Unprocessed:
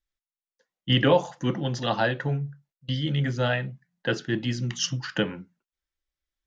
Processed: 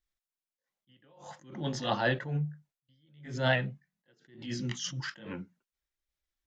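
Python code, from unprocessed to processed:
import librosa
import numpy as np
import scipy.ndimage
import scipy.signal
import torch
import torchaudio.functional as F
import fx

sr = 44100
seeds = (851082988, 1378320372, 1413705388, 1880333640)

y = fx.pitch_ramps(x, sr, semitones=1.0, every_ms=888)
y = fx.attack_slew(y, sr, db_per_s=110.0)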